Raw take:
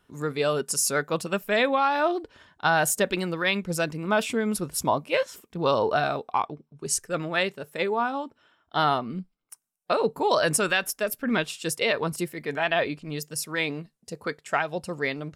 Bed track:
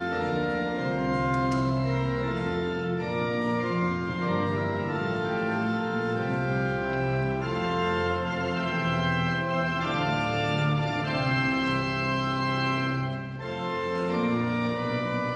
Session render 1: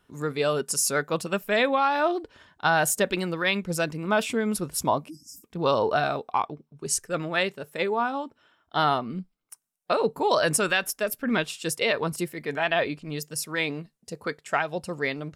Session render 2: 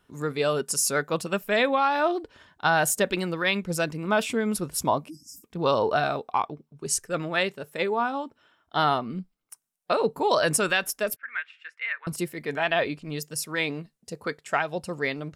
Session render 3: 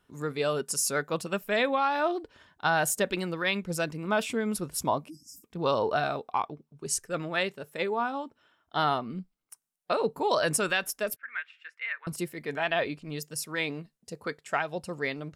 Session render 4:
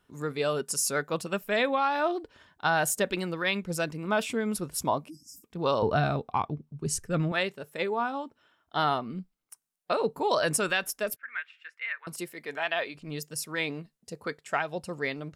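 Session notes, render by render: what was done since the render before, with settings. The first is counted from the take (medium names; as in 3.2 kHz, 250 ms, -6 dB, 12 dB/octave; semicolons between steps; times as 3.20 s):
5.09–5.44 s: spectral selection erased 340–4700 Hz
11.16–12.07 s: Butterworth band-pass 1.8 kHz, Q 2.1
trim -3.5 dB
5.82–7.32 s: tone controls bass +14 dB, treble -2 dB; 11.85–12.94 s: high-pass 290 Hz -> 810 Hz 6 dB/octave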